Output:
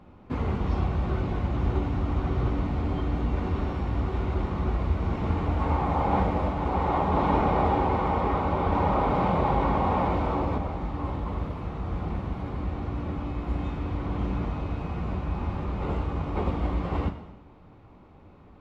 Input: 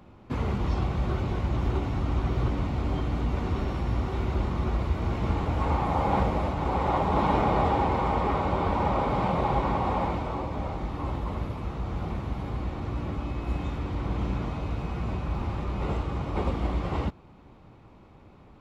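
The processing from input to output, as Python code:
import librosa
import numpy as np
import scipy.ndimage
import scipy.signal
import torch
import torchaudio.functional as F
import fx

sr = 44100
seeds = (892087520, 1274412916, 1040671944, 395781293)

y = fx.high_shelf(x, sr, hz=4500.0, db=-10.5)
y = fx.rev_gated(y, sr, seeds[0], gate_ms=360, shape='falling', drr_db=7.5)
y = fx.env_flatten(y, sr, amount_pct=50, at=(8.72, 10.58))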